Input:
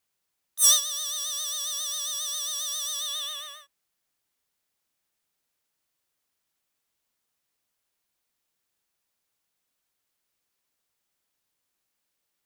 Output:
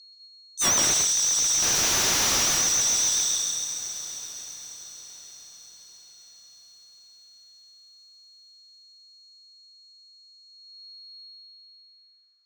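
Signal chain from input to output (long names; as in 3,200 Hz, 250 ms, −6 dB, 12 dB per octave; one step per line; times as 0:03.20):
flat-topped bell 5,500 Hz +15 dB 1.3 octaves
in parallel at −0.5 dB: speech leveller within 4 dB 0.5 s
on the sum: steady tone 4,300 Hz −31 dBFS
band-pass filter sweep 6,600 Hz → 1,300 Hz, 0:10.44–0:12.37
0:01.62–0:02.43: sample-rate reduction 12,000 Hz, jitter 20%
on a send: feedback delay with all-pass diffusion 838 ms, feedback 42%, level −14 dB
on the sum: dense smooth reverb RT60 1.8 s, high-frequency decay 0.55×, pre-delay 115 ms, DRR −2.5 dB
slew-rate limiting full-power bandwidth 1,500 Hz
level −9 dB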